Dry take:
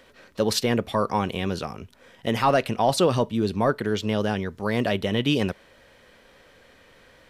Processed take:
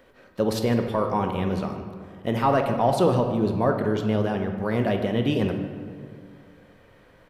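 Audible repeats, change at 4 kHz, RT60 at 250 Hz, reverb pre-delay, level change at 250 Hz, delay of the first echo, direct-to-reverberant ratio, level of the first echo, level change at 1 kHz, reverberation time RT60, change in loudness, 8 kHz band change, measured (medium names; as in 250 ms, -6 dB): 1, -7.5 dB, 2.4 s, 12 ms, +1.5 dB, 151 ms, 5.0 dB, -17.0 dB, 0.0 dB, 2.1 s, 0.0 dB, -8.5 dB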